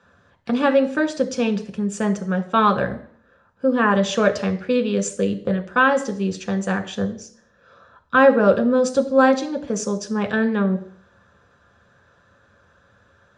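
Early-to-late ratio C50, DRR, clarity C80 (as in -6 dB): 13.5 dB, 5.0 dB, 16.5 dB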